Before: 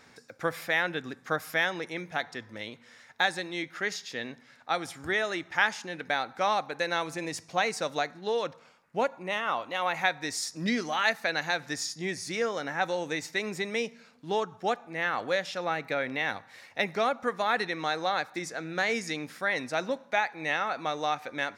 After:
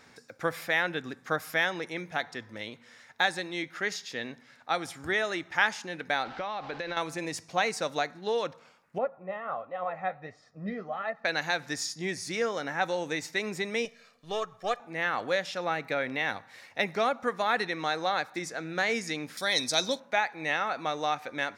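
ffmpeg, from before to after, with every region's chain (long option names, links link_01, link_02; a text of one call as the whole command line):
ffmpeg -i in.wav -filter_complex "[0:a]asettb=1/sr,asplit=3[link_01][link_02][link_03];[link_01]atrim=end=6.254[link_04];[link_02]atrim=start=6.25:end=6.97,asetpts=PTS-STARTPTS,afade=type=in:duration=0.004:curve=qsin,afade=type=out:start_time=0.716:duration=0.004:curve=qsin,aeval=exprs='val(0)+0.5*0.00944*sgn(val(0))':channel_layout=same,lowpass=frequency=4700:width=0.5412,lowpass=frequency=4700:width=1.3066,acompressor=threshold=-30dB:ratio=12:attack=3.2:release=140:knee=1:detection=peak[link_05];[link_03]atrim=start=6.966[link_06];[link_04][link_05]acrossfade=duration=0.004:curve1=hsin:curve2=qsin[link_07];[link_07][link_06]acrossfade=duration=0.004:curve1=qsin:curve2=hsin,asettb=1/sr,asplit=3[link_08][link_09][link_10];[link_08]atrim=end=8.984[link_11];[link_09]atrim=start=8.98:end=11.25,asetpts=PTS-STARTPTS,afade=type=in:duration=0.004:curve=qsin,afade=type=out:start_time=2.266:duration=0.004:curve=qsin,lowpass=1100,aecho=1:1:1.6:0.68,atrim=end_sample=100107,flanger=delay=3.3:depth=7.5:regen=63:speed=1.4:shape=sinusoidal[link_12];[link_10]atrim=start=11.246[link_13];[link_11][link_12]acrossfade=duration=0.004:curve1=hsin:curve2=qsin[link_14];[link_14][link_13]acrossfade=duration=0.004:curve1=qsin:curve2=hsin,asettb=1/sr,asplit=3[link_15][link_16][link_17];[link_15]atrim=end=13.854[link_18];[link_16]atrim=start=13.85:end=14.8,asetpts=PTS-STARTPTS,afade=type=in:duration=0.004:curve=qsin,afade=type=out:start_time=0.946:duration=0.004:curve=qsin,aeval=exprs='if(lt(val(0),0),0.708*val(0),val(0))':channel_layout=same,lowshelf=frequency=470:gain=-7,aecho=1:1:1.7:0.62,atrim=end_sample=41895[link_19];[link_17]atrim=start=14.796[link_20];[link_18][link_19]acrossfade=duration=0.004:curve1=hsin:curve2=qsin[link_21];[link_21][link_20]acrossfade=duration=0.004:curve1=qsin:curve2=hsin,asettb=1/sr,asplit=3[link_22][link_23][link_24];[link_22]atrim=end=19.374[link_25];[link_23]atrim=start=19.37:end=20,asetpts=PTS-STARTPTS,afade=type=in:duration=0.004:curve=qsin,afade=type=out:start_time=0.626:duration=0.004:curve=qsin,asuperstop=centerf=2800:order=12:qfactor=8,highshelf=frequency=2700:width_type=q:width=1.5:gain=13[link_26];[link_24]atrim=start=19.996[link_27];[link_25][link_26]acrossfade=duration=0.004:curve1=hsin:curve2=qsin[link_28];[link_28][link_27]acrossfade=duration=0.004:curve1=qsin:curve2=hsin" out.wav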